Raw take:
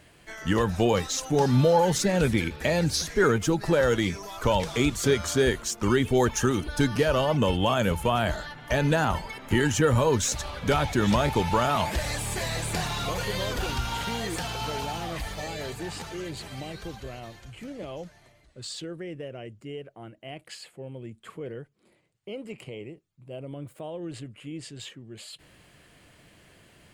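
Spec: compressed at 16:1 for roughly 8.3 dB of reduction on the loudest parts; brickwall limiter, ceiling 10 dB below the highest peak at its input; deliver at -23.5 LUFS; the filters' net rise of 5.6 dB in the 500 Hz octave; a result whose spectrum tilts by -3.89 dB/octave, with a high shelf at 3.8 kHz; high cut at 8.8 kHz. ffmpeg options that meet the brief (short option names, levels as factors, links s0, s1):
-af "lowpass=8800,equalizer=f=500:t=o:g=6.5,highshelf=f=3800:g=7.5,acompressor=threshold=0.1:ratio=16,volume=2.11,alimiter=limit=0.251:level=0:latency=1"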